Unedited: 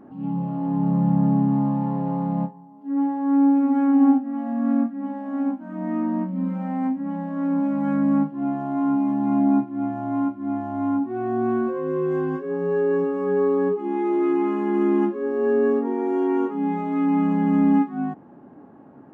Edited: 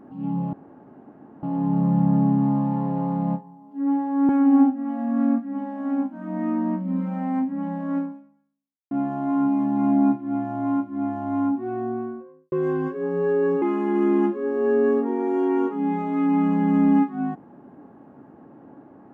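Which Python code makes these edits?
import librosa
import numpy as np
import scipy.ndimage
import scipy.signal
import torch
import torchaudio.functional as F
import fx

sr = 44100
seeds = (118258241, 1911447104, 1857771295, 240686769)

y = fx.studio_fade_out(x, sr, start_s=10.92, length_s=1.08)
y = fx.edit(y, sr, fx.insert_room_tone(at_s=0.53, length_s=0.9),
    fx.cut(start_s=3.39, length_s=0.38),
    fx.fade_out_span(start_s=7.46, length_s=0.93, curve='exp'),
    fx.cut(start_s=13.1, length_s=1.31), tone=tone)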